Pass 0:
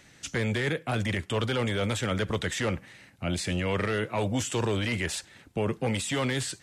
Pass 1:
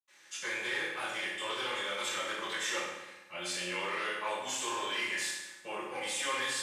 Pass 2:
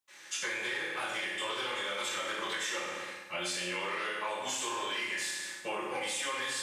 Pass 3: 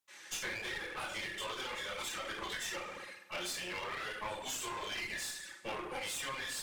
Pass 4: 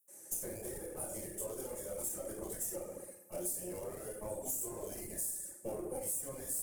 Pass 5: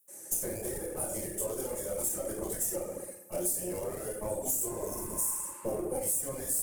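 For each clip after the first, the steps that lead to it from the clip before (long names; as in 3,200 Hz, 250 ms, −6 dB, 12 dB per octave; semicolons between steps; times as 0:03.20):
high-pass filter 910 Hz 12 dB per octave; convolution reverb RT60 1.0 s, pre-delay 77 ms; level +6.5 dB
downward compressor, threshold −40 dBFS, peak gain reduction 10.5 dB; level +7.5 dB
reverb reduction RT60 1.3 s; asymmetric clip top −45 dBFS
drawn EQ curve 620 Hz 0 dB, 1,000 Hz −18 dB, 3,600 Hz −30 dB, 9,600 Hz +11 dB; downward compressor, threshold −38 dBFS, peak gain reduction 6 dB; level +4 dB
healed spectral selection 0:04.81–0:05.71, 850–5,100 Hz; level +7 dB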